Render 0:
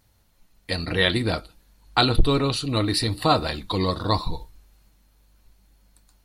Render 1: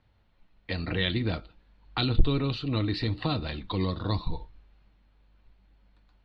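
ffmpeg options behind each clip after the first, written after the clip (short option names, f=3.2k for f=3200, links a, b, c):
-filter_complex "[0:a]lowpass=f=3.5k:w=0.5412,lowpass=f=3.5k:w=1.3066,acrossover=split=310|2500[a][b][c];[b]acompressor=threshold=-32dB:ratio=6[d];[a][d][c]amix=inputs=3:normalize=0,volume=-2.5dB"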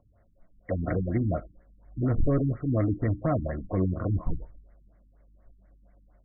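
-af "asoftclip=type=hard:threshold=-21dB,superequalizer=8b=2.51:9b=0.501,afftfilt=real='re*lt(b*sr/1024,300*pow(2300/300,0.5+0.5*sin(2*PI*4.2*pts/sr)))':imag='im*lt(b*sr/1024,300*pow(2300/300,0.5+0.5*sin(2*PI*4.2*pts/sr)))':win_size=1024:overlap=0.75,volume=3dB"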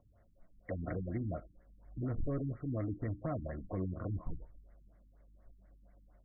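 -af "acompressor=threshold=-44dB:ratio=1.5,volume=-3.5dB"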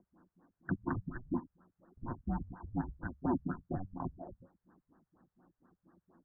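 -af "highpass=f=510:t=q:w=0.5412,highpass=f=510:t=q:w=1.307,lowpass=f=2k:t=q:w=0.5176,lowpass=f=2k:t=q:w=0.7071,lowpass=f=2k:t=q:w=1.932,afreqshift=-370,volume=10dB"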